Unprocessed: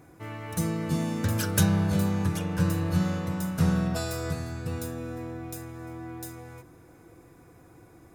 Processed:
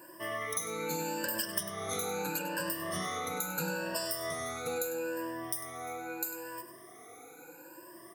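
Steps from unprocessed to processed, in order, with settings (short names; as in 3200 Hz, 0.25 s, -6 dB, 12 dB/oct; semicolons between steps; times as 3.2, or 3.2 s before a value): moving spectral ripple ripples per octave 1.3, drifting +0.77 Hz, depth 24 dB; HPF 410 Hz 12 dB/oct; high shelf 9500 Hz +10.5 dB; compressor 6:1, threshold -32 dBFS, peak gain reduction 18.5 dB; outdoor echo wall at 17 m, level -10 dB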